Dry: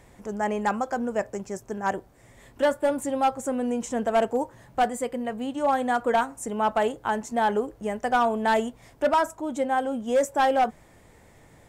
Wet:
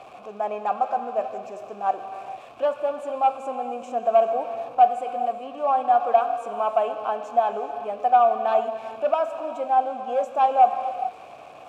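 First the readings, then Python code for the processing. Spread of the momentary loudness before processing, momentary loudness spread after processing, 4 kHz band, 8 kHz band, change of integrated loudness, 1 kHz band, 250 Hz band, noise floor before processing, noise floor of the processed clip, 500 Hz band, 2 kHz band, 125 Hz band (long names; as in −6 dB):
8 LU, 12 LU, can't be measured, below −15 dB, +2.5 dB, +5.0 dB, −12.5 dB, −54 dBFS, −44 dBFS, +1.5 dB, −8.0 dB, below −10 dB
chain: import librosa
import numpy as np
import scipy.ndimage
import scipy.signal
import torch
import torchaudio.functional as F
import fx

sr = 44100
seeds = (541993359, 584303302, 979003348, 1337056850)

y = x + 0.5 * 10.0 ** (-34.5 / 20.0) * np.sign(x)
y = fx.vowel_filter(y, sr, vowel='a')
y = fx.rev_gated(y, sr, seeds[0], gate_ms=460, shape='flat', drr_db=7.5)
y = F.gain(torch.from_numpy(y), 8.5).numpy()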